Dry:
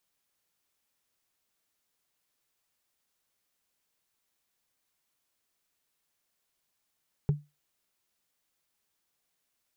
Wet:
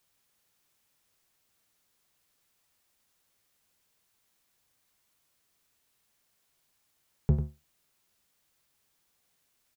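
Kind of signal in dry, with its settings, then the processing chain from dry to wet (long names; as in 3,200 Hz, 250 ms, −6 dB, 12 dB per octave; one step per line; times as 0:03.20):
struck wood, lowest mode 147 Hz, decay 0.23 s, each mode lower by 11 dB, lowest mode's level −18 dB
sub-octave generator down 1 octave, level −1 dB
in parallel at −1.5 dB: brickwall limiter −26.5 dBFS
on the sum: single-tap delay 96 ms −10 dB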